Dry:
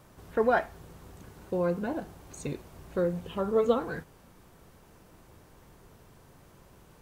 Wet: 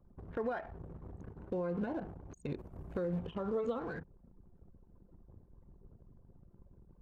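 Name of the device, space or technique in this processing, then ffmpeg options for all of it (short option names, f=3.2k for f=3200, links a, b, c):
de-esser from a sidechain: -filter_complex "[0:a]asplit=2[a][b];[b]highpass=f=4.3k:p=1,apad=whole_len=309492[c];[a][c]sidechaincompress=threshold=-58dB:ratio=3:attack=3.4:release=58,asettb=1/sr,asplit=3[d][e][f];[d]atrim=end=2.574[g];[e]atrim=start=2.57:end=3.19,asetpts=PTS-STARTPTS,afade=t=in:d=0.004:c=qsin,afade=t=out:st=0.616:d=0.004:c=qsin,highshelf=f=5.9k:g=4.5[h];[f]atrim=start=3.186[i];[g][h]acrossfade=d=0.004:c1=hsin:c2=qsin[j];[j][i]acrossfade=d=0.004:c1=qsin:c2=hsin,anlmdn=0.01,volume=3dB"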